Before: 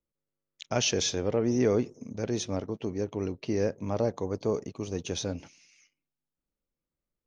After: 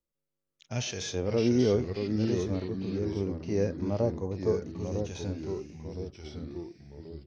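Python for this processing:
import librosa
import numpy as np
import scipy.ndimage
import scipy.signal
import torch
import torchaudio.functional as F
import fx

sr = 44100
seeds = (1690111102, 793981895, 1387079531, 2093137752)

y = fx.hpss(x, sr, part='percussive', gain_db=-17)
y = fx.echo_pitch(y, sr, ms=465, semitones=-2, count=3, db_per_echo=-6.0)
y = y * librosa.db_to_amplitude(2.5)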